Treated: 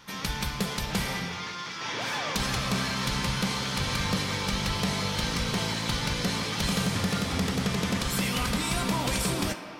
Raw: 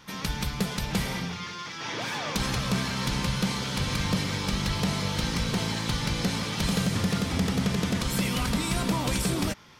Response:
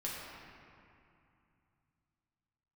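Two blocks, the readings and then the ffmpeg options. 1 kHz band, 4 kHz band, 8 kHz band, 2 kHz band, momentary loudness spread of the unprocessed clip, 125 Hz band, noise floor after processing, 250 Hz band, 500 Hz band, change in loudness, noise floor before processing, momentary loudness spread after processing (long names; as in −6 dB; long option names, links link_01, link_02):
+1.5 dB, +1.0 dB, +1.0 dB, +1.5 dB, 5 LU, −2.5 dB, −37 dBFS, −2.0 dB, 0.0 dB, 0.0 dB, −38 dBFS, 4 LU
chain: -filter_complex "[0:a]asplit=2[link_01][link_02];[link_02]highpass=390[link_03];[1:a]atrim=start_sample=2205[link_04];[link_03][link_04]afir=irnorm=-1:irlink=0,volume=-4.5dB[link_05];[link_01][link_05]amix=inputs=2:normalize=0,volume=-2dB"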